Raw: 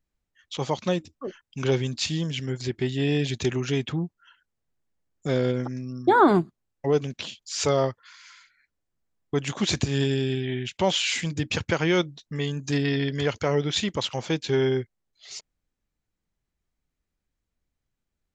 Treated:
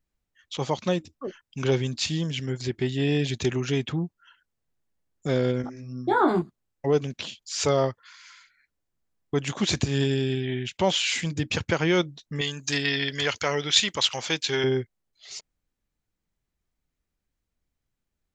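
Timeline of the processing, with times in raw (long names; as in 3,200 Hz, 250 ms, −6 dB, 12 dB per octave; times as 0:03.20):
0:05.62–0:06.42: micro pitch shift up and down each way 18 cents
0:12.41–0:14.64: tilt shelving filter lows −8 dB, about 800 Hz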